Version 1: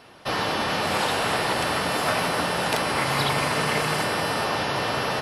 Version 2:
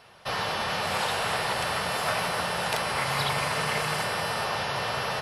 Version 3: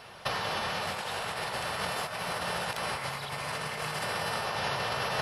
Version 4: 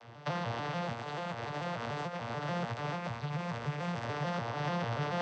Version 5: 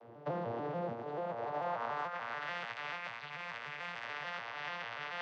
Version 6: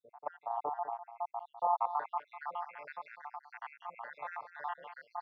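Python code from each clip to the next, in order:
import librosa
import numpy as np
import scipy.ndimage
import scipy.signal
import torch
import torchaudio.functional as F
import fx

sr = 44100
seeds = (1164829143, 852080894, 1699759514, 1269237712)

y1 = fx.peak_eq(x, sr, hz=290.0, db=-13.0, octaves=0.67)
y1 = F.gain(torch.from_numpy(y1), -3.0).numpy()
y2 = fx.over_compress(y1, sr, threshold_db=-32.0, ratio=-0.5)
y3 = fx.vocoder_arp(y2, sr, chord='major triad', root=46, every_ms=146)
y3 = F.gain(torch.from_numpy(y3), -1.5).numpy()
y4 = fx.rider(y3, sr, range_db=10, speed_s=2.0)
y4 = fx.filter_sweep_bandpass(y4, sr, from_hz=400.0, to_hz=2200.0, start_s=1.09, end_s=2.56, q=1.4)
y4 = F.gain(torch.from_numpy(y4), 3.5).numpy()
y5 = fx.spec_dropout(y4, sr, seeds[0], share_pct=80)
y5 = fx.bandpass_q(y5, sr, hz=870.0, q=2.8)
y5 = y5 + 10.0 ** (-12.0 / 20.0) * np.pad(y5, (int(201 * sr / 1000.0), 0))[:len(y5)]
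y5 = F.gain(torch.from_numpy(y5), 11.0).numpy()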